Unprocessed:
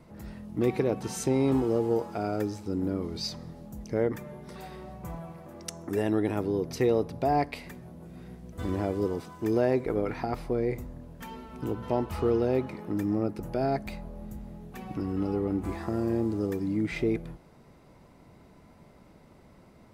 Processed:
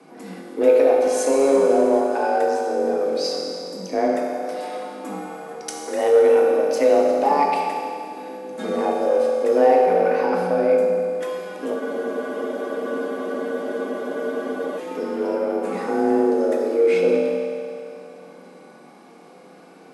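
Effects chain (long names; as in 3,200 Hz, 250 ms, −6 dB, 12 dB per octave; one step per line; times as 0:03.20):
dynamic equaliser 3,700 Hz, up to −4 dB, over −48 dBFS, Q 0.85
frequency shifter +140 Hz
convolution reverb RT60 2.4 s, pre-delay 3 ms, DRR −2 dB
in parallel at −11 dB: soft clipping −23.5 dBFS, distortion −9 dB
on the sum: low-shelf EQ 480 Hz −4 dB
hum removal 49.6 Hz, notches 29
frozen spectrum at 0:11.83, 2.94 s
level +5 dB
MP2 96 kbit/s 44,100 Hz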